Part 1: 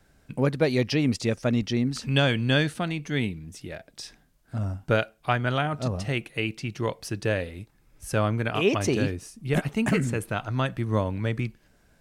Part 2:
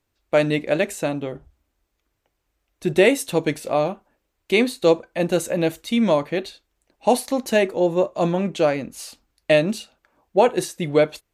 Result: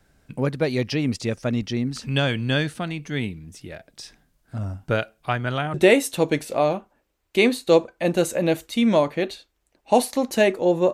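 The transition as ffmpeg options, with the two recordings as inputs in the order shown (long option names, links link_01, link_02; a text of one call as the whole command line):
ffmpeg -i cue0.wav -i cue1.wav -filter_complex "[0:a]apad=whole_dur=10.93,atrim=end=10.93,atrim=end=5.742[link_01];[1:a]atrim=start=2.888:end=8.08[link_02];[link_01][link_02]acrossfade=duration=0.004:curve1=hsin:curve2=hsin" out.wav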